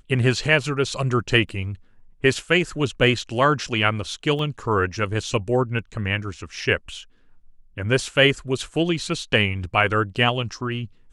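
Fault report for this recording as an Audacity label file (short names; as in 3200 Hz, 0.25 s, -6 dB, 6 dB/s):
1.490000	1.490000	gap 2.1 ms
4.390000	4.390000	gap 2.3 ms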